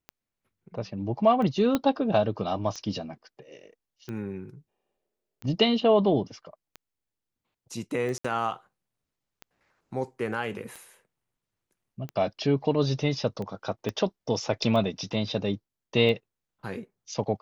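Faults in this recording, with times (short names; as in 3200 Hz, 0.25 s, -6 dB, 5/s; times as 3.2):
tick 45 rpm -24 dBFS
1.75 pop -11 dBFS
8.18–8.24 gap 65 ms
13.89 pop -17 dBFS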